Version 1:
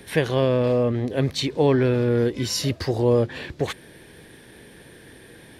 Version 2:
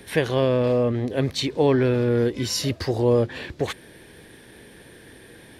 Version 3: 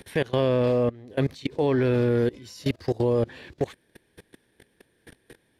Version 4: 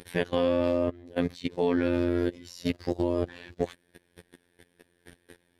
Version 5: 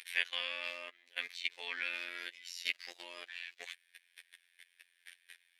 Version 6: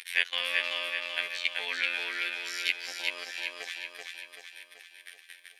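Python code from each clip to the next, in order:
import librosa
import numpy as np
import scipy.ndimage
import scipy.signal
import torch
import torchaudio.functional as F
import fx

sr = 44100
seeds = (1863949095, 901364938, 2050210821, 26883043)

y1 = fx.peak_eq(x, sr, hz=150.0, db=-3.0, octaves=0.36)
y2 = fx.level_steps(y1, sr, step_db=23)
y2 = y2 * librosa.db_to_amplitude(1.5)
y3 = fx.robotise(y2, sr, hz=87.4)
y4 = fx.highpass_res(y3, sr, hz=2300.0, q=2.6)
y4 = y4 * librosa.db_to_amplitude(-1.5)
y5 = fx.echo_feedback(y4, sr, ms=383, feedback_pct=53, wet_db=-3.0)
y5 = y5 * librosa.db_to_amplitude(6.5)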